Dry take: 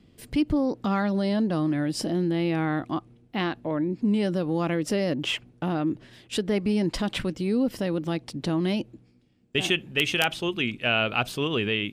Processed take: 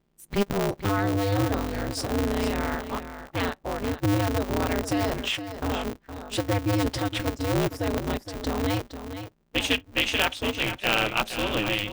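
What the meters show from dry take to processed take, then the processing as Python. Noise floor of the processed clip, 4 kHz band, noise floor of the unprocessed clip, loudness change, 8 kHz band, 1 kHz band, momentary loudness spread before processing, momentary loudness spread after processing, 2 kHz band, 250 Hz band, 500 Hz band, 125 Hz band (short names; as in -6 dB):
-62 dBFS, +1.0 dB, -58 dBFS, -0.5 dB, +3.5 dB, +3.0 dB, 6 LU, 8 LU, +0.5 dB, -3.5 dB, 0.0 dB, +1.5 dB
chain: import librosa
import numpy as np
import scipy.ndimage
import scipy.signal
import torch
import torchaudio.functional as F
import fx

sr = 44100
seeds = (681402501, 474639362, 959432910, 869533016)

p1 = fx.add_hum(x, sr, base_hz=60, snr_db=25)
p2 = fx.noise_reduce_blind(p1, sr, reduce_db=20)
p3 = p2 + fx.echo_single(p2, sr, ms=465, db=-10.5, dry=0)
y = p3 * np.sign(np.sin(2.0 * np.pi * 100.0 * np.arange(len(p3)) / sr))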